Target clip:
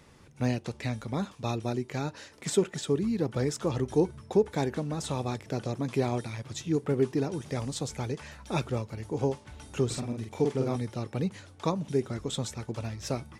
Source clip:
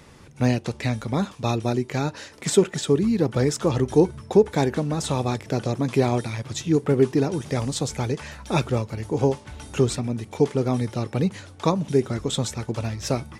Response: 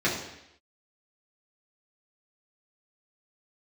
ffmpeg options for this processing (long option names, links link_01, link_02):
-filter_complex "[0:a]asettb=1/sr,asplit=3[link_01][link_02][link_03];[link_01]atrim=end=9.864[link_04];[link_02]atrim=start=9.86:end=10.76,asetpts=PTS-STARTPTS,afade=type=in:duration=0.004:curve=qsin,afade=type=out:start_time=0.896:duration=0.004:curve=qsin,asplit=2[link_05][link_06];[link_06]adelay=45,volume=-3.5dB[link_07];[link_05][link_07]amix=inputs=2:normalize=0,atrim=end_sample=39690[link_08];[link_03]atrim=start=10.756[link_09];[link_04][link_08]acrossfade=duration=0.004:curve1=hsin:curve2=qsin[link_10];[link_10][link_09]acrossfade=duration=0.004:curve1=qsin:curve2=hsin,volume=-7.5dB"